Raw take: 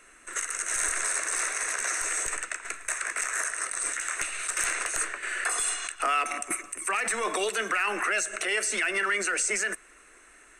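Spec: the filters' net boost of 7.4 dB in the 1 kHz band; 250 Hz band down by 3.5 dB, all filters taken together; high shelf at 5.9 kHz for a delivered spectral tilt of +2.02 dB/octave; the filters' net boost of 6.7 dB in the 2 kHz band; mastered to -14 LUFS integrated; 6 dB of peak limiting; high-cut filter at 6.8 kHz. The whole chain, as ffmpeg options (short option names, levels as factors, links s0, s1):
-af "lowpass=6800,equalizer=f=250:t=o:g=-7.5,equalizer=f=1000:t=o:g=8,equalizer=f=2000:t=o:g=5,highshelf=f=5900:g=8,volume=3.55,alimiter=limit=0.631:level=0:latency=1"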